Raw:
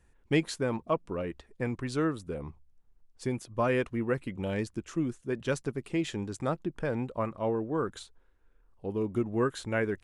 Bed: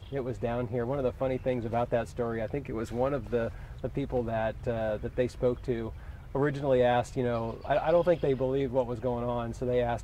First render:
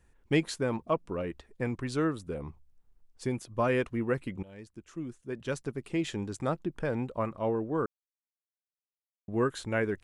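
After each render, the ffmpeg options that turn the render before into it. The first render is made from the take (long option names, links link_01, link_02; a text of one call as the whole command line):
ffmpeg -i in.wav -filter_complex "[0:a]asplit=4[link_01][link_02][link_03][link_04];[link_01]atrim=end=4.43,asetpts=PTS-STARTPTS,afade=type=out:start_time=4.426:duration=0.004:curve=hsin:silence=0.0841395[link_05];[link_02]atrim=start=4.43:end=7.86,asetpts=PTS-STARTPTS,afade=type=in:duration=1.66:silence=0.0841395,afade=type=out:start_time=3.426:duration=0.004:curve=hsin[link_06];[link_03]atrim=start=7.86:end=9.28,asetpts=PTS-STARTPTS,volume=0[link_07];[link_04]atrim=start=9.28,asetpts=PTS-STARTPTS,afade=type=in:duration=0.004:curve=hsin[link_08];[link_05][link_06][link_07][link_08]concat=n=4:v=0:a=1" out.wav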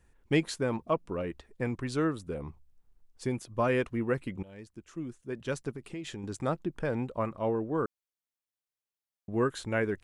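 ffmpeg -i in.wav -filter_complex "[0:a]asettb=1/sr,asplit=3[link_01][link_02][link_03];[link_01]atrim=end=5.744[link_04];[link_02]atrim=start=5.74:end=6.24,asetpts=PTS-STARTPTS,afade=type=in:duration=0.004:curve=qsin,afade=type=out:start_time=0.496:duration=0.004:curve=qsin,acompressor=threshold=-36dB:ratio=5:attack=3.2:release=140:knee=1:detection=peak[link_05];[link_03]atrim=start=6.236[link_06];[link_04][link_05]acrossfade=duration=0.004:curve1=hsin:curve2=qsin[link_07];[link_07][link_06]acrossfade=duration=0.004:curve1=qsin:curve2=hsin" out.wav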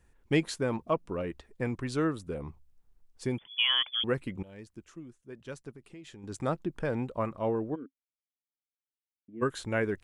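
ffmpeg -i in.wav -filter_complex "[0:a]asettb=1/sr,asplit=3[link_01][link_02][link_03];[link_01]atrim=end=3.384[link_04];[link_02]atrim=start=3.38:end=4.04,asetpts=PTS-STARTPTS,afade=type=in:duration=0.004:curve=qsin,afade=type=out:start_time=0.656:duration=0.004:curve=qsin,lowpass=frequency=3000:width_type=q:width=0.5098,lowpass=frequency=3000:width_type=q:width=0.6013,lowpass=frequency=3000:width_type=q:width=0.9,lowpass=frequency=3000:width_type=q:width=2.563,afreqshift=-3500[link_05];[link_03]atrim=start=4.036[link_06];[link_04][link_05]acrossfade=duration=0.004:curve1=hsin:curve2=qsin[link_07];[link_07][link_06]acrossfade=duration=0.004:curve1=qsin:curve2=hsin,asplit=3[link_08][link_09][link_10];[link_08]afade=type=out:start_time=7.74:duration=0.02[link_11];[link_09]asplit=3[link_12][link_13][link_14];[link_12]bandpass=frequency=270:width_type=q:width=8,volume=0dB[link_15];[link_13]bandpass=frequency=2290:width_type=q:width=8,volume=-6dB[link_16];[link_14]bandpass=frequency=3010:width_type=q:width=8,volume=-9dB[link_17];[link_15][link_16][link_17]amix=inputs=3:normalize=0,afade=type=in:start_time=7.74:duration=0.02,afade=type=out:start_time=9.41:duration=0.02[link_18];[link_10]afade=type=in:start_time=9.41:duration=0.02[link_19];[link_11][link_18][link_19]amix=inputs=3:normalize=0,asplit=3[link_20][link_21][link_22];[link_20]atrim=end=5.01,asetpts=PTS-STARTPTS,afade=type=out:start_time=4.86:duration=0.15:silence=0.375837[link_23];[link_21]atrim=start=5.01:end=6.21,asetpts=PTS-STARTPTS,volume=-8.5dB[link_24];[link_22]atrim=start=6.21,asetpts=PTS-STARTPTS,afade=type=in:duration=0.15:silence=0.375837[link_25];[link_23][link_24][link_25]concat=n=3:v=0:a=1" out.wav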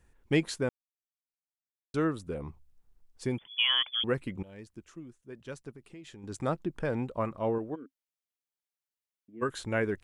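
ffmpeg -i in.wav -filter_complex "[0:a]asettb=1/sr,asplit=3[link_01][link_02][link_03];[link_01]atrim=end=7.584[link_04];[link_02]atrim=start=7.58:end=9.49,asetpts=PTS-STARTPTS,afade=type=in:duration=0.004:curve=qsin,afade=type=out:start_time=1.906:duration=0.004:curve=qsin,lowshelf=frequency=360:gain=-5.5[link_05];[link_03]atrim=start=9.486[link_06];[link_04][link_05]acrossfade=duration=0.004:curve1=hsin:curve2=qsin[link_07];[link_07][link_06]acrossfade=duration=0.004:curve1=qsin:curve2=hsin,asplit=3[link_08][link_09][link_10];[link_08]atrim=end=0.69,asetpts=PTS-STARTPTS,afade=type=out:start_time=0.686:duration=0.004:curve=hsin[link_11];[link_09]atrim=start=0.69:end=1.94,asetpts=PTS-STARTPTS,volume=0[link_12];[link_10]atrim=start=1.94,asetpts=PTS-STARTPTS,afade=type=in:duration=0.004:curve=hsin[link_13];[link_11][link_12][link_13]concat=n=3:v=0:a=1" out.wav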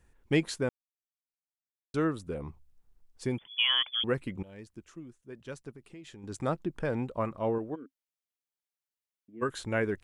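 ffmpeg -i in.wav -af anull out.wav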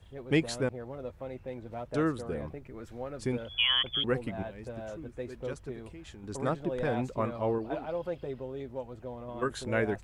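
ffmpeg -i in.wav -i bed.wav -filter_complex "[1:a]volume=-10.5dB[link_01];[0:a][link_01]amix=inputs=2:normalize=0" out.wav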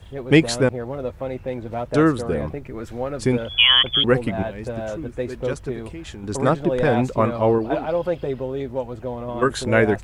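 ffmpeg -i in.wav -af "volume=12dB" out.wav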